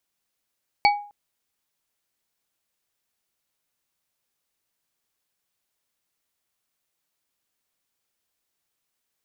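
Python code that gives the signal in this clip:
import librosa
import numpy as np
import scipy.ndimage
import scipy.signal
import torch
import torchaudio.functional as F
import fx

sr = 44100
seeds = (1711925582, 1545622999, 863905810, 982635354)

y = fx.strike_glass(sr, length_s=0.26, level_db=-12.0, body='bar', hz=823.0, decay_s=0.43, tilt_db=3.5, modes=3)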